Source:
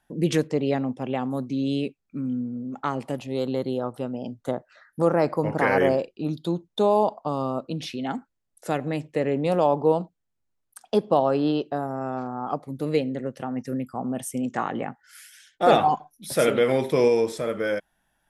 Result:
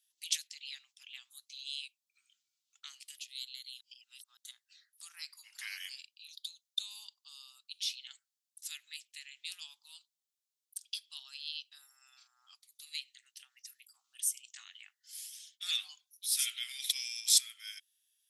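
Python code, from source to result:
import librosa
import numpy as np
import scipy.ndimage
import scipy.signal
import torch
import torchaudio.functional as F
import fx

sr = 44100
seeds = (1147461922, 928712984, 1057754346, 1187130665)

y = fx.sustainer(x, sr, db_per_s=27.0, at=(16.71, 17.48))
y = fx.edit(y, sr, fx.reverse_span(start_s=3.81, length_s=0.56), tone=tone)
y = scipy.signal.sosfilt(scipy.signal.cheby2(4, 80, 570.0, 'highpass', fs=sr, output='sos'), y)
y = F.gain(torch.from_numpy(y), 3.0).numpy()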